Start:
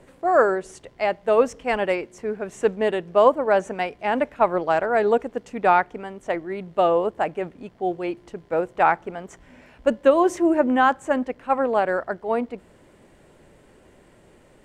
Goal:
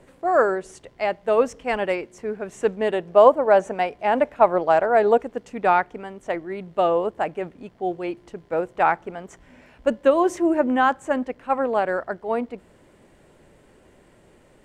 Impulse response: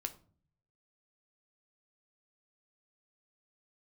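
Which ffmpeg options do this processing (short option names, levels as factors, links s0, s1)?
-filter_complex "[0:a]asettb=1/sr,asplit=3[s0][s1][s2];[s0]atrim=end=2.934[s3];[s1]atrim=start=2.93:end=5.19,asetpts=PTS-STARTPTS,afade=t=in:d=0.004:c=qsin,afade=t=out:st=2.256:d=0.004:c=qsin,equalizer=f=680:t=o:w=1.2:g=5[s4];[s2]atrim=start=5.186[s5];[s3][s4]acrossfade=d=0.004:c1=hsin:c2=qsin[s6];[s6][s5]acrossfade=d=0.004:c1=qsin:c2=hsin,volume=0.891"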